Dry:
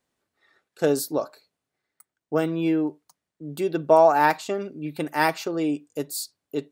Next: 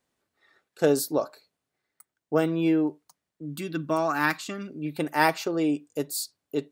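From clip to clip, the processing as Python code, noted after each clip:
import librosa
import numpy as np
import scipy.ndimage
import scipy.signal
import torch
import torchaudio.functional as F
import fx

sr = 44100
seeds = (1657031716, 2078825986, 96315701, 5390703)

y = fx.spec_box(x, sr, start_s=3.45, length_s=1.24, low_hz=340.0, high_hz=1000.0, gain_db=-12)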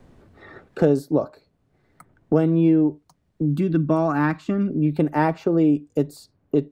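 y = fx.tilt_eq(x, sr, slope=-4.5)
y = fx.band_squash(y, sr, depth_pct=70)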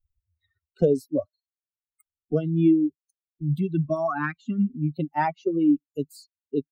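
y = fx.bin_expand(x, sr, power=3.0)
y = y * 10.0 ** (2.0 / 20.0)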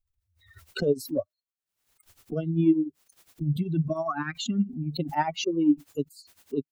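y = x * (1.0 - 0.86 / 2.0 + 0.86 / 2.0 * np.cos(2.0 * np.pi * 10.0 * (np.arange(len(x)) / sr)))
y = fx.pre_swell(y, sr, db_per_s=90.0)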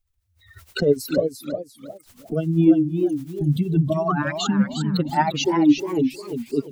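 y = x + 10.0 ** (-18.0 / 20.0) * np.pad(x, (int(316 * sr / 1000.0), 0))[:len(x)]
y = fx.echo_warbled(y, sr, ms=351, feedback_pct=32, rate_hz=2.8, cents=183, wet_db=-7.0)
y = y * 10.0 ** (6.0 / 20.0)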